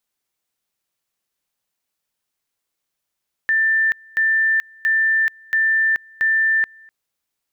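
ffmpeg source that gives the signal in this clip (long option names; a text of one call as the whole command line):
ffmpeg -f lavfi -i "aevalsrc='pow(10,(-14-28.5*gte(mod(t,0.68),0.43))/20)*sin(2*PI*1780*t)':duration=3.4:sample_rate=44100" out.wav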